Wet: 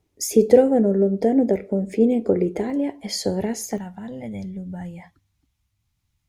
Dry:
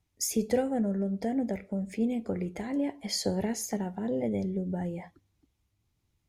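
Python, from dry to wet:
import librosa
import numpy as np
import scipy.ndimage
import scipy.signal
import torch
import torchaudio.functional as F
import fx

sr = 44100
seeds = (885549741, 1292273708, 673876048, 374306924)

y = fx.peak_eq(x, sr, hz=400.0, db=fx.steps((0.0, 13.5), (2.7, 3.5), (3.78, -13.5)), octaves=1.3)
y = F.gain(torch.from_numpy(y), 4.0).numpy()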